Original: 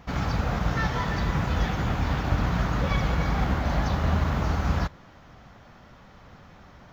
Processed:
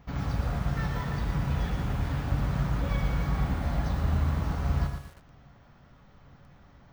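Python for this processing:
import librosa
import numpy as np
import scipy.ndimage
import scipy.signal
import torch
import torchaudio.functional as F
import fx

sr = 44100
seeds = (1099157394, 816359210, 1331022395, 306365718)

y = fx.low_shelf(x, sr, hz=220.0, db=7.0)
y = fx.comb_fb(y, sr, f0_hz=140.0, decay_s=0.72, harmonics='all', damping=0.0, mix_pct=70)
y = np.repeat(scipy.signal.resample_poly(y, 1, 2), 2)[:len(y)]
y = fx.echo_crushed(y, sr, ms=116, feedback_pct=35, bits=8, wet_db=-7.0)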